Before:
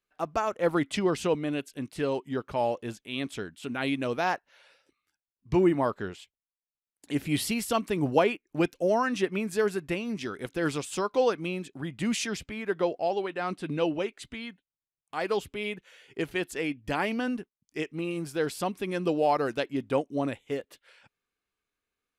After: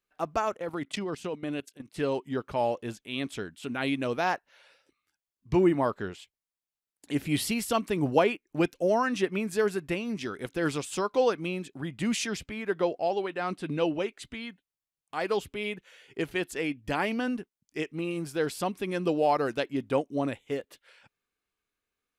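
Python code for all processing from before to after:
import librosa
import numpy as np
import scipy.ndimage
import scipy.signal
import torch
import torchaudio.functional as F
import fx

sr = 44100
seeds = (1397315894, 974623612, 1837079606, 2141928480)

y = fx.chain(x, sr, fx.highpass(hz=97.0, slope=12),
    fx.level_steps(step_db=16), at=(0.57, 1.97))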